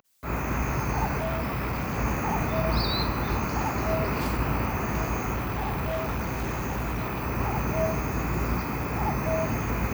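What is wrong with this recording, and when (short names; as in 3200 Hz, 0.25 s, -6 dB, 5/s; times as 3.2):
1.18–1.99 clipped -25 dBFS
5.35–7.24 clipped -25.5 dBFS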